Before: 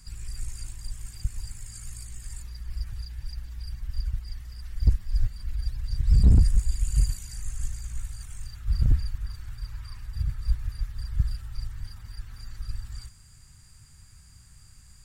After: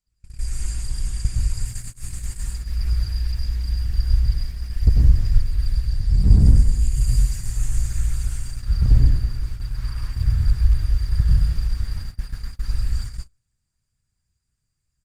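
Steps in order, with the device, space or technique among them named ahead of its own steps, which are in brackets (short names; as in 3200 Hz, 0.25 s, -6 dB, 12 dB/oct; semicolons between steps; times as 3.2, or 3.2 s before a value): speakerphone in a meeting room (reverb RT60 0.90 s, pre-delay 88 ms, DRR -2.5 dB; speakerphone echo 0.13 s, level -22 dB; AGC gain up to 8 dB; gate -25 dBFS, range -34 dB; gain -1 dB; Opus 16 kbps 48000 Hz)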